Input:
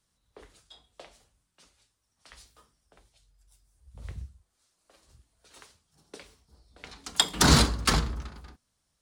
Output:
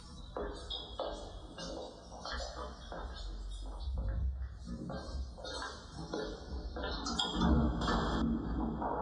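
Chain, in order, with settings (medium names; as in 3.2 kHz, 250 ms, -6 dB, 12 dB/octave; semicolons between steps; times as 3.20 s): Butterworth band-stop 2.3 kHz, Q 1.8; on a send: repeats whose band climbs or falls 701 ms, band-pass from 260 Hz, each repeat 1.4 oct, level -7 dB; on the sum: chorus 0.4 Hz, delay 16.5 ms, depth 2.6 ms; loudest bins only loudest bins 64; distance through air 96 m; low-pass that closes with the level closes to 1.1 kHz, closed at -27.5 dBFS; in parallel at 0 dB: upward compressor, threshold -32 dBFS; on the sum: two-slope reverb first 0.37 s, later 3.3 s, from -18 dB, DRR -3 dB; compression 2.5:1, threshold -35 dBFS, peak gain reduction 18 dB; 7.81–8.22 s: spectrum-flattening compressor 2:1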